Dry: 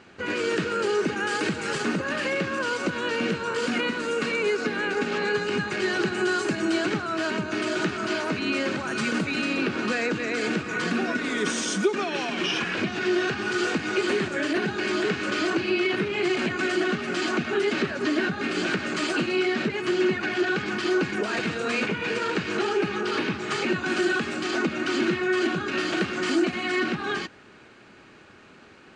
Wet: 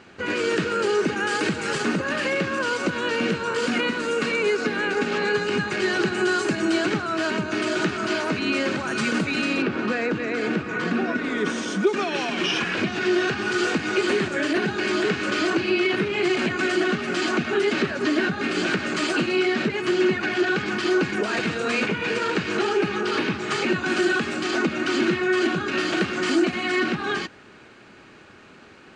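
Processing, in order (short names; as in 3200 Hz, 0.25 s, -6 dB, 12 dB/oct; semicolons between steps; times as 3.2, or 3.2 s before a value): 9.62–11.87 LPF 2100 Hz 6 dB/oct; gain +2.5 dB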